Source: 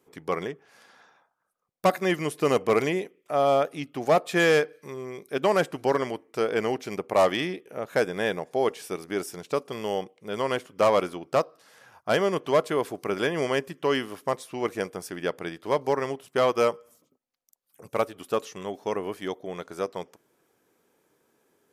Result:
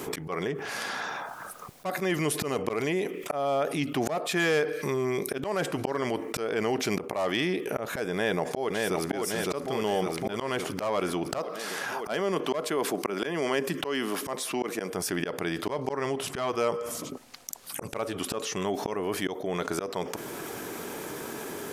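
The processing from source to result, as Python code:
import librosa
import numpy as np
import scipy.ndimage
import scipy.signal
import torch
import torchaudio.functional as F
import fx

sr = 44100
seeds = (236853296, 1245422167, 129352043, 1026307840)

y = fx.echo_throw(x, sr, start_s=8.14, length_s=0.96, ms=560, feedback_pct=50, wet_db=-5.0)
y = fx.highpass(y, sr, hz=160.0, slope=24, at=(11.38, 14.9))
y = fx.lowpass(y, sr, hz=11000.0, slope=12, at=(15.66, 18.57))
y = fx.notch(y, sr, hz=510.0, q=12.0)
y = fx.auto_swell(y, sr, attack_ms=621.0)
y = fx.env_flatten(y, sr, amount_pct=70)
y = y * librosa.db_to_amplitude(-2.0)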